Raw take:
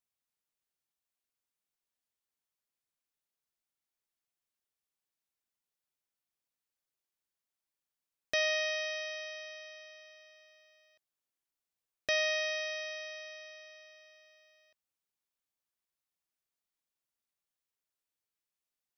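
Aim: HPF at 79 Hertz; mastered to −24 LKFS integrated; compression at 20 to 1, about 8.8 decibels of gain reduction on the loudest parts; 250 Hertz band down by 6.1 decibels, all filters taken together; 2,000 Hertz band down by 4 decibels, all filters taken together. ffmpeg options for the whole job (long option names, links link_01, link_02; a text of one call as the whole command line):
ffmpeg -i in.wav -af "highpass=79,equalizer=frequency=250:width_type=o:gain=-8.5,equalizer=frequency=2000:width_type=o:gain=-4.5,acompressor=threshold=-37dB:ratio=20,volume=19dB" out.wav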